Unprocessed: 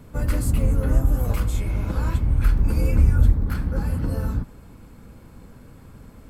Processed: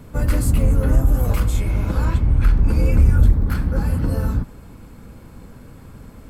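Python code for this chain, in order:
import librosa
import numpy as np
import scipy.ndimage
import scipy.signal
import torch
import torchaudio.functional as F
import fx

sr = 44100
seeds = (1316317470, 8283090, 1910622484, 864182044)

p1 = fx.high_shelf(x, sr, hz=9600.0, db=-11.5, at=(2.05, 2.92))
p2 = np.clip(p1, -10.0 ** (-15.0 / 20.0), 10.0 ** (-15.0 / 20.0))
y = p1 + F.gain(torch.from_numpy(p2), -4.0).numpy()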